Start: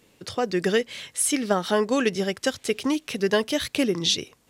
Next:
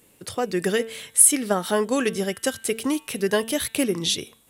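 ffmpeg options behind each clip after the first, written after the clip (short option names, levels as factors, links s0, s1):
-af "highshelf=f=7400:t=q:w=1.5:g=9,bandreject=f=224.9:t=h:w=4,bandreject=f=449.8:t=h:w=4,bandreject=f=674.7:t=h:w=4,bandreject=f=899.6:t=h:w=4,bandreject=f=1124.5:t=h:w=4,bandreject=f=1349.4:t=h:w=4,bandreject=f=1574.3:t=h:w=4,bandreject=f=1799.2:t=h:w=4,bandreject=f=2024.1:t=h:w=4,bandreject=f=2249:t=h:w=4,bandreject=f=2473.9:t=h:w=4,bandreject=f=2698.8:t=h:w=4,bandreject=f=2923.7:t=h:w=4,bandreject=f=3148.6:t=h:w=4,bandreject=f=3373.5:t=h:w=4,bandreject=f=3598.4:t=h:w=4,bandreject=f=3823.3:t=h:w=4,bandreject=f=4048.2:t=h:w=4"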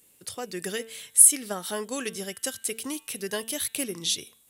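-af "highshelf=f=2900:g=11.5,volume=0.282"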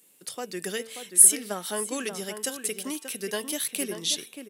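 -filter_complex "[0:a]highpass=f=160:w=0.5412,highpass=f=160:w=1.3066,asplit=2[s0][s1];[s1]adelay=583.1,volume=0.398,highshelf=f=4000:g=-13.1[s2];[s0][s2]amix=inputs=2:normalize=0"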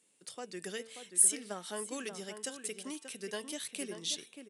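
-af "aresample=22050,aresample=44100,volume=0.376"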